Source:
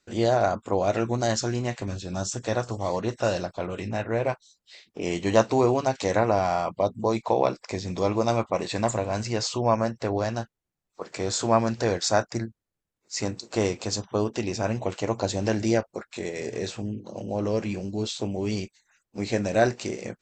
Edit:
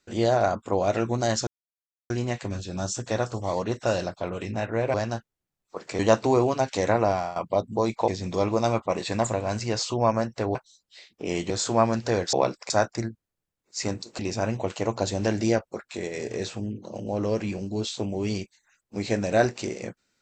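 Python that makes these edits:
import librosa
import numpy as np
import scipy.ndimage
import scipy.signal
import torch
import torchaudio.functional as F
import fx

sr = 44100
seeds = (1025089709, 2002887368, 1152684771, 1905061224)

y = fx.edit(x, sr, fx.insert_silence(at_s=1.47, length_s=0.63),
    fx.swap(start_s=4.31, length_s=0.95, other_s=10.19, other_length_s=1.05),
    fx.fade_out_to(start_s=6.37, length_s=0.26, floor_db=-14.5),
    fx.move(start_s=7.35, length_s=0.37, to_s=12.07),
    fx.cut(start_s=13.56, length_s=0.85), tone=tone)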